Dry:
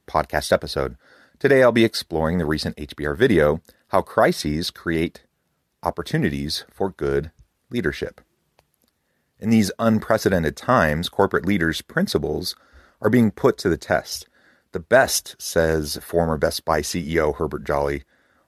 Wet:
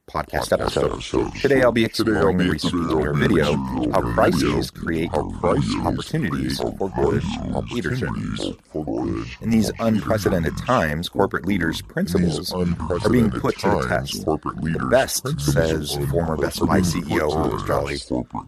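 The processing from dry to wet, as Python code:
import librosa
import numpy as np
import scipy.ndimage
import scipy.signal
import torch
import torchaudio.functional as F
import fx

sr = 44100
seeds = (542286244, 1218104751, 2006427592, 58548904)

y = fx.filter_lfo_notch(x, sr, shape='saw_down', hz=4.3, low_hz=330.0, high_hz=5000.0, q=1.4)
y = fx.high_shelf(y, sr, hz=5700.0, db=8.5, at=(16.94, 17.78))
y = fx.echo_pitch(y, sr, ms=173, semitones=-4, count=3, db_per_echo=-3.0)
y = fx.band_squash(y, sr, depth_pct=100, at=(0.67, 1.46))
y = y * 10.0 ** (-1.0 / 20.0)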